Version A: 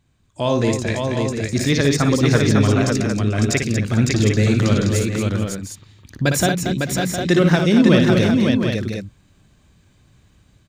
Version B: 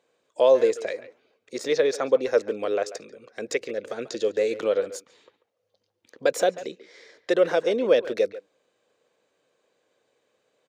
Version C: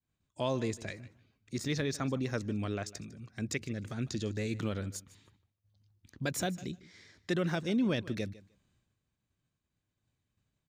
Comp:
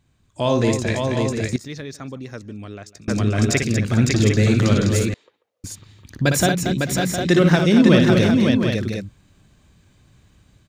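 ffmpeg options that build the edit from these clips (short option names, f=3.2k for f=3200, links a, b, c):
-filter_complex "[0:a]asplit=3[a][b][c];[a]atrim=end=1.562[d];[2:a]atrim=start=1.558:end=3.082[e];[b]atrim=start=3.078:end=5.142[f];[1:a]atrim=start=5.138:end=5.642[g];[c]atrim=start=5.638[h];[d][e]acrossfade=d=0.004:c1=hsin:c2=hsin[i];[i][f]acrossfade=d=0.004:c1=hsin:c2=hsin[j];[j][g]acrossfade=d=0.004:c1=hsin:c2=hsin[k];[k][h]acrossfade=d=0.004:c1=hsin:c2=hsin"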